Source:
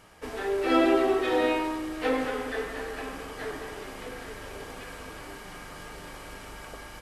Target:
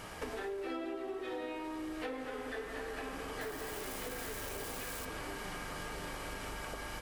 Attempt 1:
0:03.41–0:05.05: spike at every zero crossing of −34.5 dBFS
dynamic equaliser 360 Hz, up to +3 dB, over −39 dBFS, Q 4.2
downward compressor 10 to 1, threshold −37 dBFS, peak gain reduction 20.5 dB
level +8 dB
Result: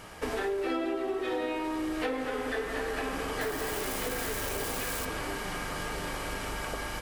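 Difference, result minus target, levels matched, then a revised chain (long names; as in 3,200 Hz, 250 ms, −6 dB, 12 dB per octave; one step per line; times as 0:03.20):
downward compressor: peak gain reduction −8.5 dB
0:03.41–0:05.05: spike at every zero crossing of −34.5 dBFS
dynamic equaliser 360 Hz, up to +3 dB, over −39 dBFS, Q 4.2
downward compressor 10 to 1, threshold −46.5 dBFS, peak gain reduction 29 dB
level +8 dB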